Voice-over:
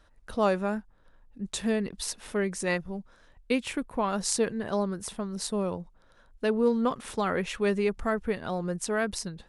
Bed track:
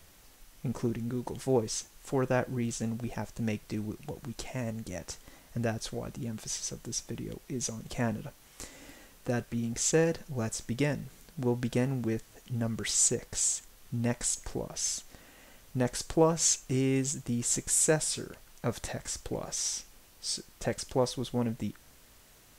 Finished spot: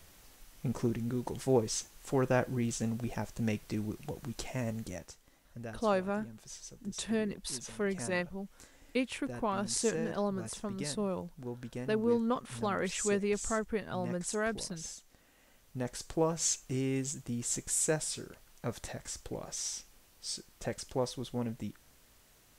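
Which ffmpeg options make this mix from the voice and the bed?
-filter_complex "[0:a]adelay=5450,volume=-5dB[a];[1:a]volume=6.5dB,afade=t=out:st=4.84:d=0.29:silence=0.266073,afade=t=in:st=15.05:d=1.41:silence=0.446684[b];[a][b]amix=inputs=2:normalize=0"

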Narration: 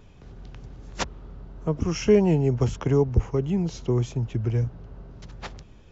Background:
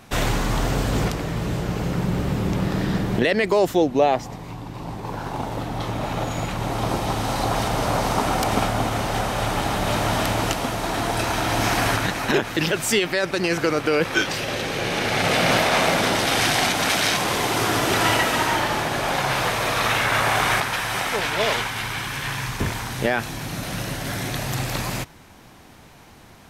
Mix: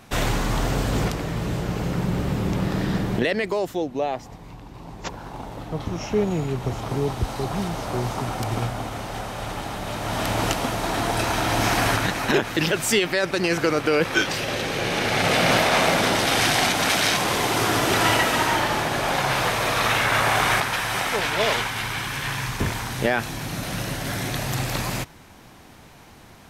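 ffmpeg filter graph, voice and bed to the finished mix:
-filter_complex "[0:a]adelay=4050,volume=-4.5dB[a];[1:a]volume=6.5dB,afade=t=out:st=3.07:d=0.59:silence=0.473151,afade=t=in:st=9.99:d=0.46:silence=0.421697[b];[a][b]amix=inputs=2:normalize=0"

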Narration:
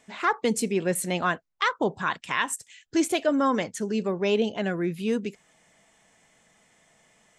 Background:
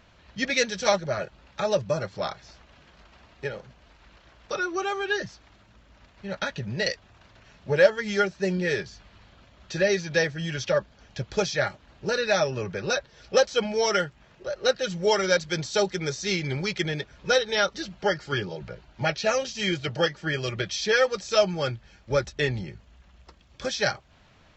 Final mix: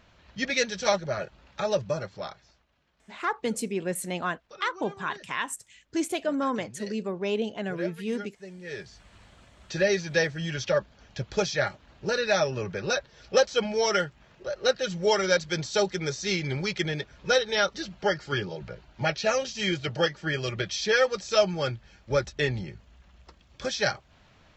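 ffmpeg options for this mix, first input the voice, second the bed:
-filter_complex "[0:a]adelay=3000,volume=-4.5dB[a];[1:a]volume=14.5dB,afade=t=out:st=1.83:d=0.82:silence=0.16788,afade=t=in:st=8.62:d=0.53:silence=0.149624[b];[a][b]amix=inputs=2:normalize=0"

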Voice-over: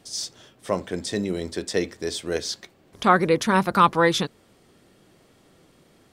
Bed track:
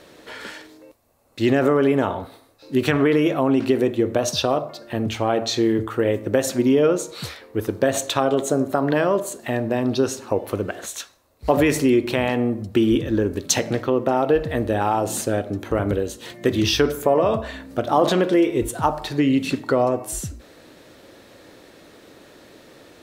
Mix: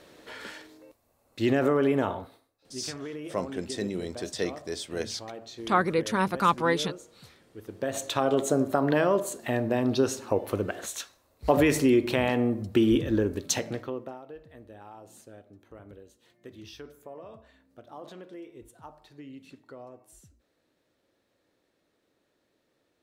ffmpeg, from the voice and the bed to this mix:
-filter_complex "[0:a]adelay=2650,volume=-6dB[a];[1:a]volume=10.5dB,afade=t=out:st=2.09:d=0.42:silence=0.188365,afade=t=in:st=7.62:d=0.76:silence=0.149624,afade=t=out:st=13.12:d=1.08:silence=0.0749894[b];[a][b]amix=inputs=2:normalize=0"

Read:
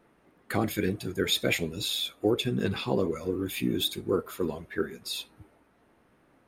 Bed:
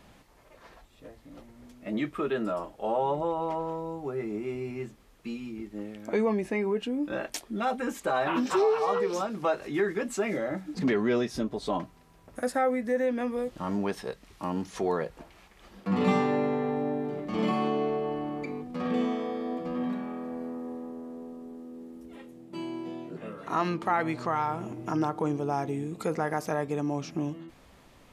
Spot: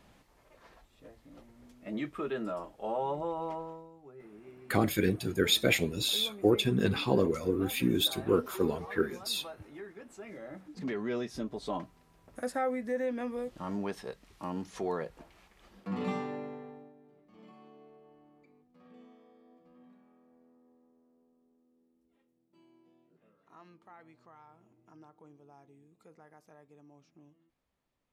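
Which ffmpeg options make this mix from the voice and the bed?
-filter_complex "[0:a]adelay=4200,volume=0.5dB[a];[1:a]volume=7.5dB,afade=t=out:st=3.48:d=0.42:silence=0.223872,afade=t=in:st=10.17:d=1.41:silence=0.223872,afade=t=out:st=15.5:d=1.43:silence=0.0749894[b];[a][b]amix=inputs=2:normalize=0"

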